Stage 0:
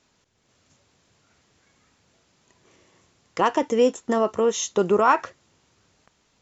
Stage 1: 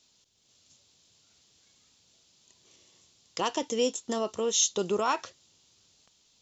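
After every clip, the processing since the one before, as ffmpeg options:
ffmpeg -i in.wav -af "highshelf=frequency=2600:width_type=q:width=1.5:gain=11,volume=-8.5dB" out.wav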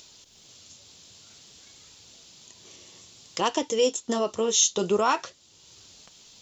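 ffmpeg -i in.wav -filter_complex "[0:a]flanger=delay=2:depth=9.2:regen=-56:speed=0.53:shape=sinusoidal,asplit=2[link_01][link_02];[link_02]acompressor=mode=upward:threshold=-40dB:ratio=2.5,volume=-3dB[link_03];[link_01][link_03]amix=inputs=2:normalize=0,volume=3.5dB" out.wav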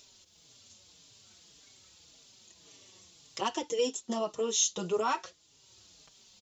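ffmpeg -i in.wav -filter_complex "[0:a]asplit=2[link_01][link_02];[link_02]adelay=4.6,afreqshift=-1.8[link_03];[link_01][link_03]amix=inputs=2:normalize=1,volume=-4dB" out.wav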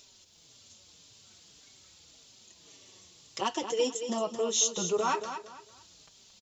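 ffmpeg -i in.wav -af "aecho=1:1:225|450|675:0.335|0.0938|0.0263,volume=1dB" out.wav

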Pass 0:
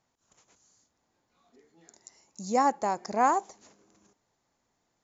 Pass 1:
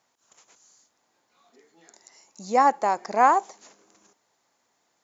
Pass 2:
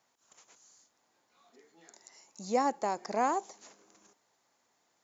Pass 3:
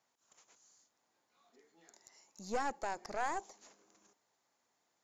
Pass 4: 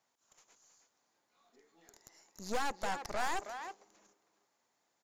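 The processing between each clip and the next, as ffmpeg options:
ffmpeg -i in.wav -filter_complex "[0:a]acrossover=split=4100[link_01][link_02];[link_02]acompressor=threshold=-53dB:ratio=4:attack=1:release=60[link_03];[link_01][link_03]amix=inputs=2:normalize=0,highpass=frequency=560:poles=1,volume=7.5dB" out.wav
ffmpeg -i in.wav -filter_complex "[0:a]acrossover=split=500|3000[link_01][link_02][link_03];[link_02]acompressor=threshold=-33dB:ratio=2.5[link_04];[link_01][link_04][link_03]amix=inputs=3:normalize=0,volume=-3dB" out.wav
ffmpeg -i in.wav -af "aeval=exprs='(tanh(22.4*val(0)+0.65)-tanh(0.65))/22.4':channel_layout=same,volume=-2.5dB" out.wav
ffmpeg -i in.wav -filter_complex "[0:a]aeval=exprs='0.0531*(cos(1*acos(clip(val(0)/0.0531,-1,1)))-cos(1*PI/2))+0.00944*(cos(8*acos(clip(val(0)/0.0531,-1,1)))-cos(8*PI/2))':channel_layout=same,asplit=2[link_01][link_02];[link_02]adelay=320,highpass=300,lowpass=3400,asoftclip=type=hard:threshold=-32.5dB,volume=-7dB[link_03];[link_01][link_03]amix=inputs=2:normalize=0" out.wav

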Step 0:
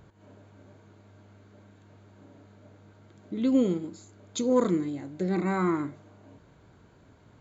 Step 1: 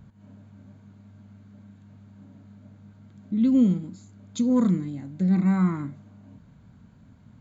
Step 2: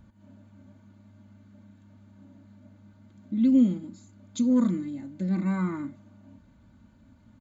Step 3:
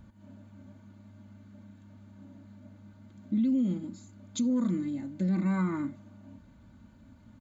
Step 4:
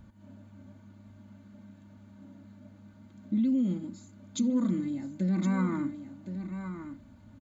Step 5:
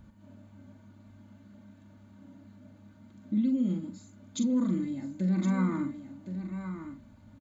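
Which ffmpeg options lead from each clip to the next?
ffmpeg -i in.wav -af "lowshelf=frequency=280:width_type=q:width=3:gain=7.5,volume=-3.5dB" out.wav
ffmpeg -i in.wav -af "aecho=1:1:3.4:0.62,volume=-3.5dB" out.wav
ffmpeg -i in.wav -af "alimiter=limit=-23dB:level=0:latency=1:release=126,volume=1.5dB" out.wav
ffmpeg -i in.wav -af "aecho=1:1:1066:0.335" out.wav
ffmpeg -i in.wav -filter_complex "[0:a]asplit=2[link_01][link_02];[link_02]adelay=43,volume=-8dB[link_03];[link_01][link_03]amix=inputs=2:normalize=0,volume=-1dB" out.wav

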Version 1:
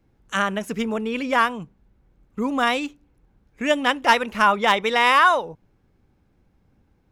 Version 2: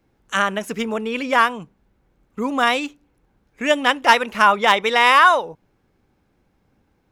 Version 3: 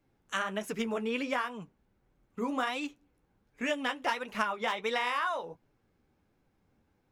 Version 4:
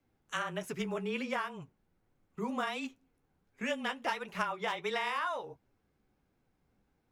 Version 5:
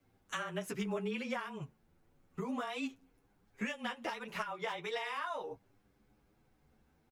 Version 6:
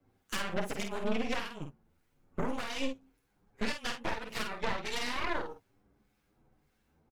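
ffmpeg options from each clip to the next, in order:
ffmpeg -i in.wav -af "lowshelf=frequency=200:gain=-9,volume=3.5dB" out.wav
ffmpeg -i in.wav -af "acompressor=threshold=-19dB:ratio=10,flanger=delay=6.5:depth=7.4:regen=-32:speed=1.4:shape=triangular,volume=-4.5dB" out.wav
ffmpeg -i in.wav -af "afreqshift=-25,volume=-3dB" out.wav
ffmpeg -i in.wav -filter_complex "[0:a]acompressor=threshold=-40dB:ratio=6,asplit=2[link_01][link_02];[link_02]adelay=8.4,afreqshift=0.39[link_03];[link_01][link_03]amix=inputs=2:normalize=1,volume=7.5dB" out.wav
ffmpeg -i in.wav -filter_complex "[0:a]acrossover=split=1400[link_01][link_02];[link_01]aeval=exprs='val(0)*(1-0.7/2+0.7/2*cos(2*PI*1.7*n/s))':channel_layout=same[link_03];[link_02]aeval=exprs='val(0)*(1-0.7/2-0.7/2*cos(2*PI*1.7*n/s))':channel_layout=same[link_04];[link_03][link_04]amix=inputs=2:normalize=0,aeval=exprs='0.0473*(cos(1*acos(clip(val(0)/0.0473,-1,1)))-cos(1*PI/2))+0.0188*(cos(6*acos(clip(val(0)/0.0473,-1,1)))-cos(6*PI/2))':channel_layout=same,asplit=2[link_05][link_06];[link_06]adelay=49,volume=-6.5dB[link_07];[link_05][link_07]amix=inputs=2:normalize=0,volume=2.5dB" out.wav

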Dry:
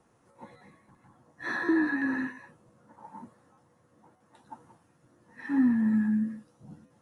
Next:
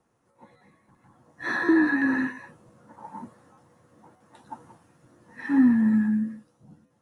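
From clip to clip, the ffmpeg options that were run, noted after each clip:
ffmpeg -i in.wav -af "dynaudnorm=framelen=210:gausssize=11:maxgain=11dB,volume=-5dB" out.wav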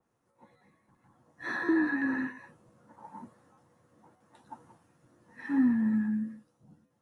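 ffmpeg -i in.wav -af "adynamicequalizer=threshold=0.00891:dfrequency=3200:dqfactor=0.7:tfrequency=3200:tqfactor=0.7:attack=5:release=100:ratio=0.375:range=2.5:mode=cutabove:tftype=highshelf,volume=-6.5dB" out.wav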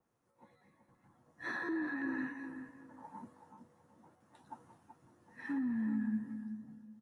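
ffmpeg -i in.wav -filter_complex "[0:a]alimiter=level_in=2.5dB:limit=-24dB:level=0:latency=1:release=249,volume=-2.5dB,asplit=2[link_01][link_02];[link_02]adelay=378,lowpass=frequency=1200:poles=1,volume=-7.5dB,asplit=2[link_03][link_04];[link_04]adelay=378,lowpass=frequency=1200:poles=1,volume=0.29,asplit=2[link_05][link_06];[link_06]adelay=378,lowpass=frequency=1200:poles=1,volume=0.29,asplit=2[link_07][link_08];[link_08]adelay=378,lowpass=frequency=1200:poles=1,volume=0.29[link_09];[link_01][link_03][link_05][link_07][link_09]amix=inputs=5:normalize=0,volume=-3.5dB" out.wav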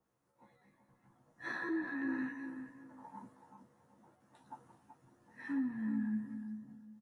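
ffmpeg -i in.wav -filter_complex "[0:a]asplit=2[link_01][link_02];[link_02]adelay=15,volume=-4dB[link_03];[link_01][link_03]amix=inputs=2:normalize=0,volume=-2.5dB" out.wav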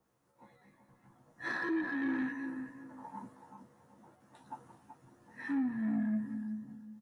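ffmpeg -i in.wav -af "asoftclip=type=tanh:threshold=-31.5dB,volume=5dB" out.wav

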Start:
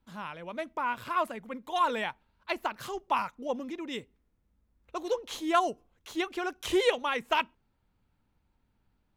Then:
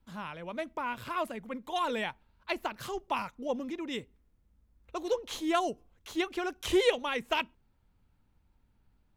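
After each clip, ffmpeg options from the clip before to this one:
ffmpeg -i in.wav -filter_complex "[0:a]acrossover=split=800|1600[link_01][link_02][link_03];[link_02]acompressor=threshold=-43dB:ratio=6[link_04];[link_01][link_04][link_03]amix=inputs=3:normalize=0,lowshelf=frequency=110:gain=6.5" out.wav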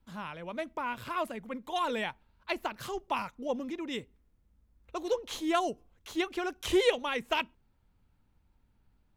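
ffmpeg -i in.wav -af anull out.wav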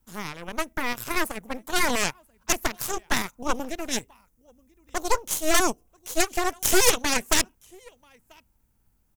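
ffmpeg -i in.wav -af "aecho=1:1:987:0.0631,aeval=exprs='0.211*(cos(1*acos(clip(val(0)/0.211,-1,1)))-cos(1*PI/2))+0.106*(cos(8*acos(clip(val(0)/0.211,-1,1)))-cos(8*PI/2))':channel_layout=same,aexciter=amount=2:drive=9.9:freq=5500" out.wav

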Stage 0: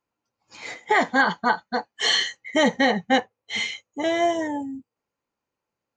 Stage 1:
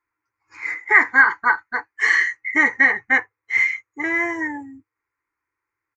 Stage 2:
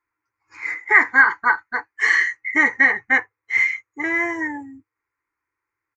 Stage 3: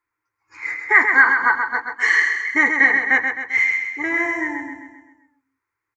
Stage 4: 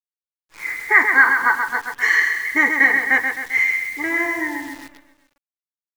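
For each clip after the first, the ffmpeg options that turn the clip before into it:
ffmpeg -i in.wav -af "firequalizer=gain_entry='entry(110,0);entry(180,-25);entry(310,1);entry(610,-16);entry(990,4);entry(2100,12);entry(3200,-21);entry(4900,-7)':delay=0.05:min_phase=1" out.wav
ffmpeg -i in.wav -af anull out.wav
ffmpeg -i in.wav -af "aecho=1:1:131|262|393|524|655|786:0.501|0.246|0.12|0.059|0.0289|0.0142" out.wav
ffmpeg -i in.wav -af "acrusher=bits=7:dc=4:mix=0:aa=0.000001" out.wav

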